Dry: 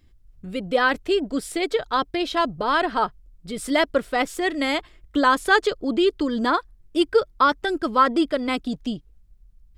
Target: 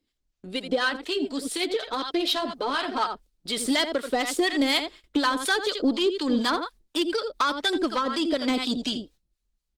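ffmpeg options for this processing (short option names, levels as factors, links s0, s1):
-filter_complex "[0:a]aecho=1:1:83:0.282,acompressor=threshold=0.0708:ratio=8,equalizer=f=125:t=o:w=1:g=-9,equalizer=f=250:t=o:w=1:g=10,equalizer=f=4000:t=o:w=1:g=10,equalizer=f=8000:t=o:w=1:g=4,asplit=3[s0][s1][s2];[s0]afade=t=out:st=0.89:d=0.02[s3];[s1]flanger=delay=2.2:depth=5.5:regen=-27:speed=1.9:shape=sinusoidal,afade=t=in:st=0.89:d=0.02,afade=t=out:st=2.99:d=0.02[s4];[s2]afade=t=in:st=2.99:d=0.02[s5];[s3][s4][s5]amix=inputs=3:normalize=0,dynaudnorm=f=200:g=9:m=1.78,agate=range=0.251:threshold=0.01:ratio=16:detection=peak,bass=f=250:g=-13,treble=f=4000:g=1,asoftclip=type=tanh:threshold=0.168,acrossover=split=800[s6][s7];[s6]aeval=exprs='val(0)*(1-0.7/2+0.7/2*cos(2*PI*4.1*n/s))':c=same[s8];[s7]aeval=exprs='val(0)*(1-0.7/2-0.7/2*cos(2*PI*4.1*n/s))':c=same[s9];[s8][s9]amix=inputs=2:normalize=0,volume=1.26" -ar 48000 -c:a libopus -b:a 24k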